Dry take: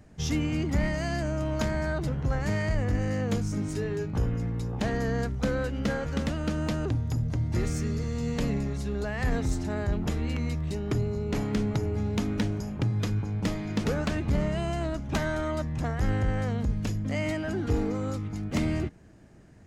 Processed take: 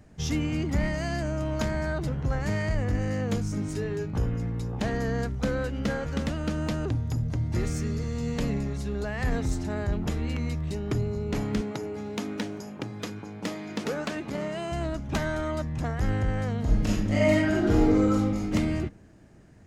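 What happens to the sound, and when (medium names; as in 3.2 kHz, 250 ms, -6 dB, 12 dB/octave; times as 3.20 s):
11.61–14.72 s: high-pass 250 Hz
16.60–18.53 s: reverb throw, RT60 0.86 s, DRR -5 dB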